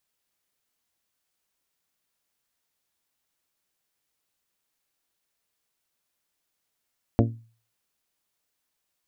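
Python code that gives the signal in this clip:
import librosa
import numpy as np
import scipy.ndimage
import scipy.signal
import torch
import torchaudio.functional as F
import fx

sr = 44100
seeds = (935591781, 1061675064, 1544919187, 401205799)

y = fx.strike_glass(sr, length_s=0.89, level_db=-16.0, body='bell', hz=114.0, decay_s=0.42, tilt_db=1.5, modes=7)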